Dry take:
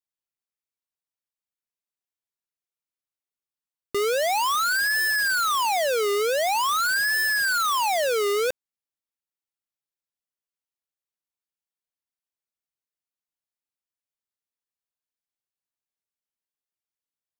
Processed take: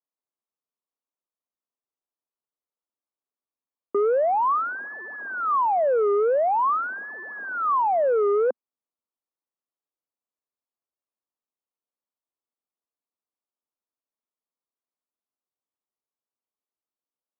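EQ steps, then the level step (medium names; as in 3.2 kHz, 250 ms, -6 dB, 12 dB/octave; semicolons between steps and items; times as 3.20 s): elliptic band-pass 230–1200 Hz, stop band 70 dB; distance through air 180 m; +4.0 dB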